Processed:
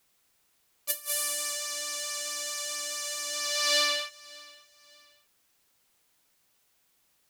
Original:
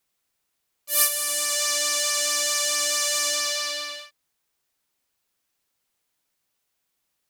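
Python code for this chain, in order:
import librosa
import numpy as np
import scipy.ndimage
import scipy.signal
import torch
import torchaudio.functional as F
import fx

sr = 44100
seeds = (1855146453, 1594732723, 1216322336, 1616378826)

p1 = fx.over_compress(x, sr, threshold_db=-30.0, ratio=-0.5)
y = p1 + fx.echo_feedback(p1, sr, ms=585, feedback_pct=34, wet_db=-23.0, dry=0)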